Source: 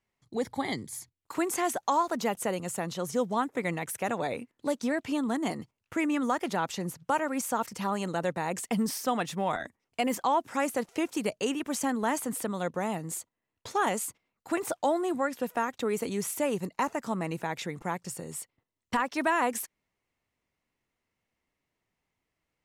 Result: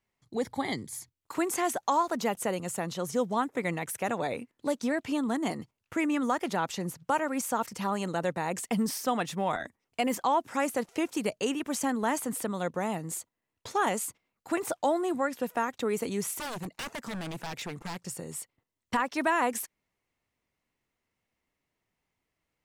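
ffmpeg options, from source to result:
-filter_complex "[0:a]asettb=1/sr,asplit=3[a][b][c];[a]atrim=end=16.384[d];[b]atrim=start=16.38:end=18.01,asetpts=PTS-STARTPTS,afade=t=in:d=0.004:c=qsin,afade=t=out:st=1.626:d=0.004:c=qsin,aeval=exprs='0.0282*(abs(mod(val(0)/0.0282+3,4)-2)-1)':c=same[e];[c]atrim=start=18.006[f];[d][e]acrossfade=d=0.004:c1=hsin:c2=qsin[g];[g][f]acrossfade=d=0.004:c1=qsin:c2=hsin"

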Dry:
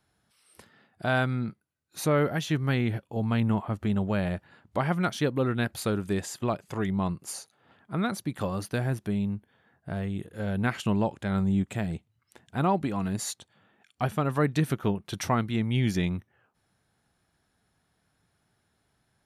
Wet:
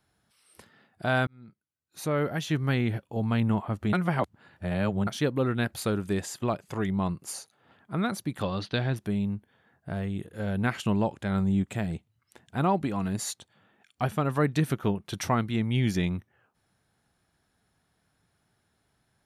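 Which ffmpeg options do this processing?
-filter_complex "[0:a]asettb=1/sr,asplit=3[a][b][c];[a]atrim=end=8.424[d];[b]atrim=start=8.42:end=8.96,asetpts=PTS-STARTPTS,afade=t=in:d=0.004:c=qsin,afade=t=out:st=0.536:d=0.004:c=qsin,lowpass=f=3.8k:t=q:w=3.7[e];[c]atrim=start=8.956[f];[d][e]acrossfade=d=0.004:c1=hsin:c2=qsin[g];[g][f]acrossfade=d=0.004:c1=qsin:c2=hsin,asplit=4[h][i][j][k];[h]atrim=end=1.27,asetpts=PTS-STARTPTS,afade=t=out:st=1.266:d=0.004:c=hsin[l];[i]atrim=start=1.27:end=3.932,asetpts=PTS-STARTPTS,afade=t=in:d=1.32[m];[j]atrim=start=3.928:end=5.072,asetpts=PTS-STARTPTS,areverse[n];[k]atrim=start=5.068[o];[l][m]concat=n=2:v=0:a=1[p];[p][n]acrossfade=d=0.004:c1=hsin:c2=hsin[q];[q][o]acrossfade=d=0.004:c1=hsin:c2=hsin"

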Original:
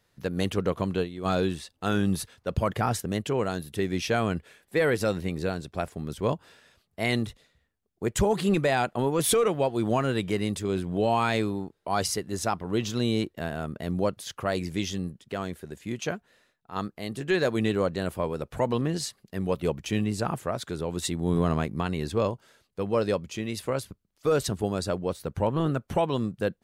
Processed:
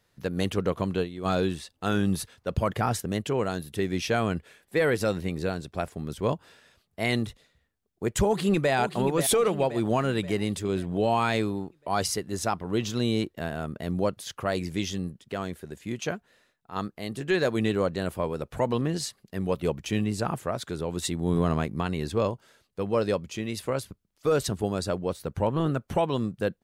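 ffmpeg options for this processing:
-filter_complex "[0:a]asplit=2[a][b];[b]afade=t=in:st=8.25:d=0.01,afade=t=out:st=8.73:d=0.01,aecho=0:1:530|1060|1590|2120|2650|3180:0.354813|0.177407|0.0887033|0.0443517|0.0221758|0.0110879[c];[a][c]amix=inputs=2:normalize=0"

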